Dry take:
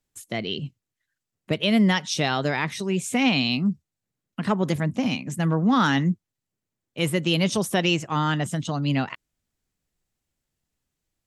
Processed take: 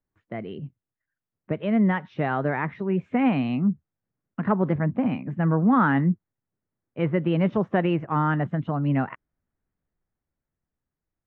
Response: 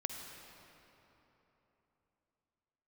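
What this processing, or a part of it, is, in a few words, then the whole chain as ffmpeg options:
action camera in a waterproof case: -af "lowpass=frequency=1800:width=0.5412,lowpass=frequency=1800:width=1.3066,dynaudnorm=framelen=570:gausssize=7:maxgain=4.5dB,volume=-3.5dB" -ar 22050 -c:a aac -b:a 64k

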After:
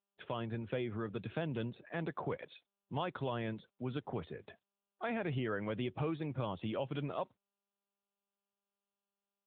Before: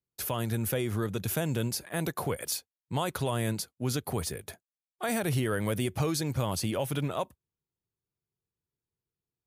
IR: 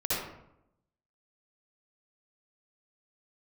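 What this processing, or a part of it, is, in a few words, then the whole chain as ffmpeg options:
mobile call with aggressive noise cancelling: -af "highpass=frequency=140:poles=1,afftdn=noise_reduction=29:noise_floor=-49,volume=-5.5dB" -ar 8000 -c:a libopencore_amrnb -b:a 10200

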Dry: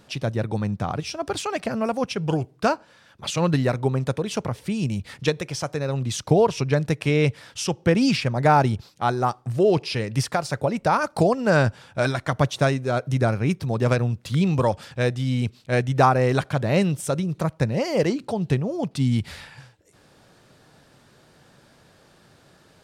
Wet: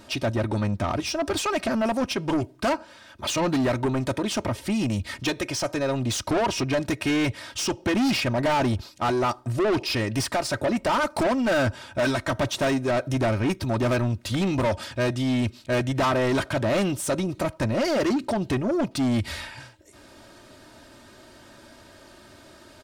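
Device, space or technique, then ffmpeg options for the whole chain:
saturation between pre-emphasis and de-emphasis: -af "highshelf=frequency=4700:gain=8.5,aecho=1:1:3.2:0.74,asoftclip=type=tanh:threshold=-24dB,highshelf=frequency=4700:gain=-8.5,volume=4.5dB"

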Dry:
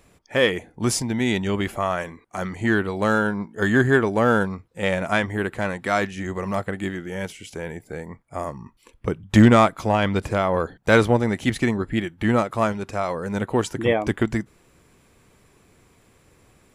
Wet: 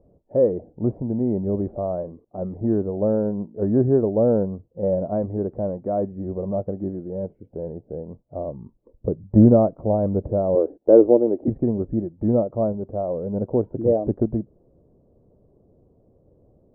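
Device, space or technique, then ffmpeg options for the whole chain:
under water: -filter_complex "[0:a]asettb=1/sr,asplit=3[link_01][link_02][link_03];[link_01]atrim=end=10.554[link_04];[link_02]atrim=start=10.55:end=11.48,asetpts=PTS-STARTPTS,afade=type=in:duration=0.004:curve=qsin,afade=type=out:start_time=0.926:duration=0.004:curve=qsin,lowshelf=frequency=220:width_type=q:width=3:gain=-13[link_05];[link_03]atrim=start=11.476[link_06];[link_04][link_05]acrossfade=duration=0.004:curve1=hsin:curve2=qsin[link_07];[link_07][link_06]acrossfade=duration=0.004:curve1=qsin:curve2=hsin,lowpass=frequency=600:width=0.5412,lowpass=frequency=600:width=1.3066,equalizer=frequency=590:width_type=o:width=0.52:gain=6.5"

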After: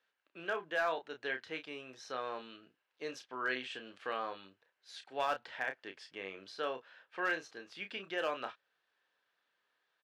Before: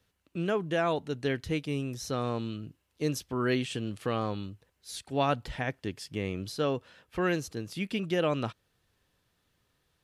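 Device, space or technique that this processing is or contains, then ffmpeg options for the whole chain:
megaphone: -filter_complex "[0:a]highpass=620,lowpass=3600,equalizer=frequency=1600:width_type=o:width=0.22:gain=7,asoftclip=type=hard:threshold=-21.5dB,asplit=2[link_01][link_02];[link_02]adelay=31,volume=-8dB[link_03];[link_01][link_03]amix=inputs=2:normalize=0,volume=-4dB"

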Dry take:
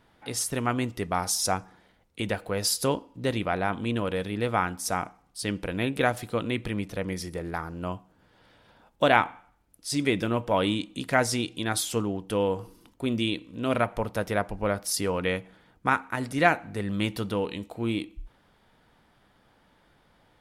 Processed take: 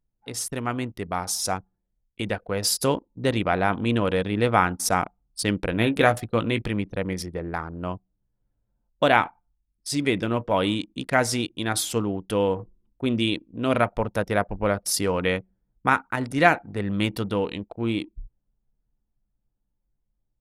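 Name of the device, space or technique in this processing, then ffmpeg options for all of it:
voice memo with heavy noise removal: -filter_complex "[0:a]asettb=1/sr,asplit=3[link_01][link_02][link_03];[link_01]atrim=end=5.714[link_04];[link_02]atrim=start=5.71:end=6.62,asetpts=PTS-STARTPTS,afade=type=in:duration=0.004:curve=qsin,afade=type=out:start_time=0.906:duration=0.004:curve=qsin,asplit=2[link_05][link_06];[link_06]adelay=18,volume=-10dB[link_07];[link_05][link_07]amix=inputs=2:normalize=0,atrim=end_sample=40131[link_08];[link_03]atrim=start=6.616[link_09];[link_04][link_08]acrossfade=duration=0.004:curve1=hsin:curve2=qsin[link_10];[link_10][link_09]acrossfade=duration=0.004:curve1=qsin:curve2=hsin,anlmdn=1.58,dynaudnorm=framelen=870:gausssize=7:maxgain=11.5dB,volume=-1dB"

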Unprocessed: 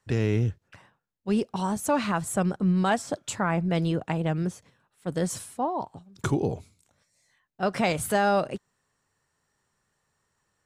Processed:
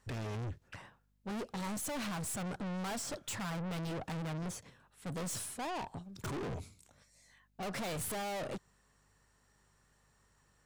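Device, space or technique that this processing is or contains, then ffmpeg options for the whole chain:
valve amplifier with mains hum: -af "aeval=exprs='(tanh(112*val(0)+0.25)-tanh(0.25))/112':channel_layout=same,aeval=exprs='val(0)+0.000141*(sin(2*PI*50*n/s)+sin(2*PI*2*50*n/s)/2+sin(2*PI*3*50*n/s)/3+sin(2*PI*4*50*n/s)/4+sin(2*PI*5*50*n/s)/5)':channel_layout=same,volume=3.5dB"

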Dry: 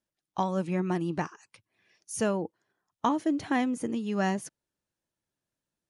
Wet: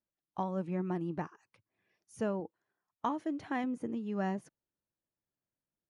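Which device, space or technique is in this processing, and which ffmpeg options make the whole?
through cloth: -filter_complex "[0:a]asettb=1/sr,asplit=3[link_01][link_02][link_03];[link_01]atrim=end=2.404[link_04];[link_02]atrim=start=2.4:end=3.64,asetpts=PTS-STARTPTS,afade=type=in:duration=0.004:curve=qsin,afade=type=out:start_time=1.236:duration=0.004:curve=qsin,tiltshelf=frequency=760:gain=-4[link_05];[link_03]atrim=start=3.636[link_06];[link_04][link_05]acrossfade=duration=0.004:curve1=hsin:curve2=qsin[link_07];[link_07][link_06]acrossfade=duration=0.004:curve1=qsin:curve2=hsin,highshelf=frequency=2800:gain=-15.5,volume=-5.5dB"

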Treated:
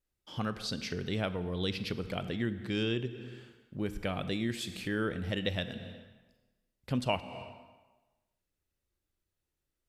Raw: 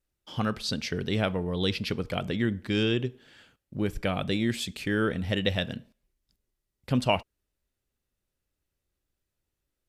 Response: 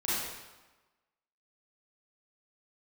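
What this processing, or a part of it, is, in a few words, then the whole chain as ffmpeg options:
ducked reverb: -filter_complex "[0:a]asplit=3[link_01][link_02][link_03];[1:a]atrim=start_sample=2205[link_04];[link_02][link_04]afir=irnorm=-1:irlink=0[link_05];[link_03]apad=whole_len=435902[link_06];[link_05][link_06]sidechaincompress=threshold=-38dB:ratio=8:attack=33:release=201,volume=-9.5dB[link_07];[link_01][link_07]amix=inputs=2:normalize=0,volume=-6.5dB"

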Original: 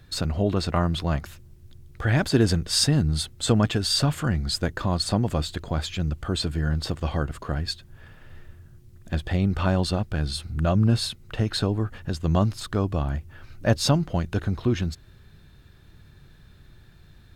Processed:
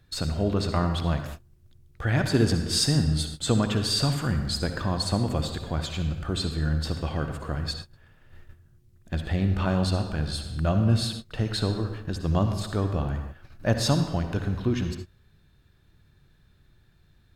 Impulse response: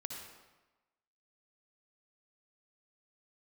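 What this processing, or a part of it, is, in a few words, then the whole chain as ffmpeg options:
keyed gated reverb: -filter_complex "[0:a]asplit=3[link_01][link_02][link_03];[1:a]atrim=start_sample=2205[link_04];[link_02][link_04]afir=irnorm=-1:irlink=0[link_05];[link_03]apad=whole_len=765185[link_06];[link_05][link_06]sidechaingate=range=-33dB:threshold=-40dB:ratio=16:detection=peak,volume=4.5dB[link_07];[link_01][link_07]amix=inputs=2:normalize=0,volume=-9dB"

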